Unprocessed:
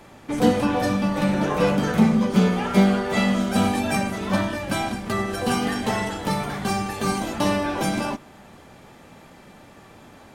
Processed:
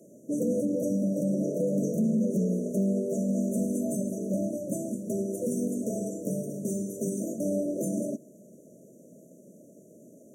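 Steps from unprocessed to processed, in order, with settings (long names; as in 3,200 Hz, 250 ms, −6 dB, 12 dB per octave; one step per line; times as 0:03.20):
high-pass filter 160 Hz 24 dB per octave
brickwall limiter −15.5 dBFS, peak gain reduction 10 dB
linear-phase brick-wall band-stop 670–5,700 Hz
level −2.5 dB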